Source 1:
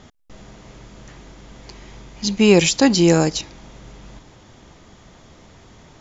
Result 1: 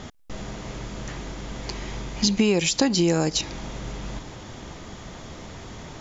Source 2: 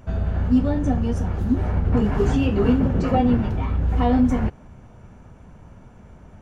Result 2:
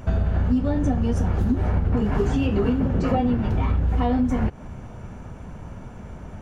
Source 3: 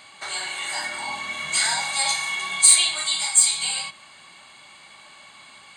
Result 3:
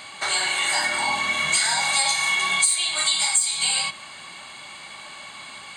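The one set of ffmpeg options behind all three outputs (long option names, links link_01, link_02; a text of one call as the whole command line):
ffmpeg -i in.wav -af "acompressor=threshold=-25dB:ratio=10,volume=7.5dB" out.wav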